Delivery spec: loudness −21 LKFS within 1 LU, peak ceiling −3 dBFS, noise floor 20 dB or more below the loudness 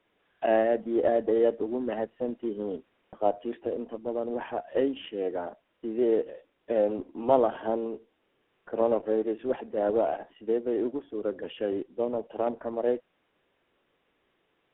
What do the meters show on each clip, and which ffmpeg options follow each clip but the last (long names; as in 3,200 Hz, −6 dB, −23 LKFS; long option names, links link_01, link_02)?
integrated loudness −29.0 LKFS; sample peak −9.0 dBFS; target loudness −21.0 LKFS
→ -af "volume=8dB,alimiter=limit=-3dB:level=0:latency=1"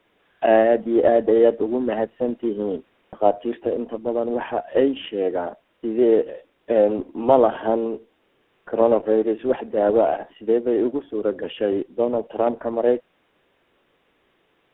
integrated loudness −21.5 LKFS; sample peak −3.0 dBFS; background noise floor −66 dBFS